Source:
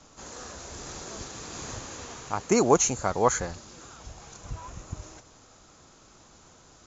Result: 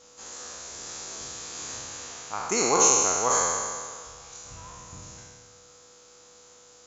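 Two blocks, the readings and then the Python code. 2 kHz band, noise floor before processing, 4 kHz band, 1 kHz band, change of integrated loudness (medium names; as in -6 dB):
+2.5 dB, -56 dBFS, +5.5 dB, +1.5 dB, +3.0 dB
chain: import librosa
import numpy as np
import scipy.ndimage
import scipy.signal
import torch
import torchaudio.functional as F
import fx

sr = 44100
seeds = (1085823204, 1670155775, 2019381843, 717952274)

y = fx.spec_trails(x, sr, decay_s=1.88)
y = fx.tilt_eq(y, sr, slope=2.5)
y = y + 10.0 ** (-51.0 / 20.0) * np.sin(2.0 * np.pi * 490.0 * np.arange(len(y)) / sr)
y = y * 10.0 ** (-5.5 / 20.0)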